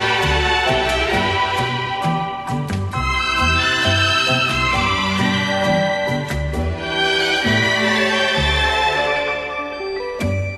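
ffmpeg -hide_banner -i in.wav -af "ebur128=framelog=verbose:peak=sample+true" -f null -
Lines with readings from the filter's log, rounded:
Integrated loudness:
  I:         -17.4 LUFS
  Threshold: -27.4 LUFS
Loudness range:
  LRA:         2.0 LU
  Threshold: -37.1 LUFS
  LRA low:   -18.3 LUFS
  LRA high:  -16.3 LUFS
Sample peak:
  Peak:       -4.1 dBFS
True peak:
  Peak:       -4.1 dBFS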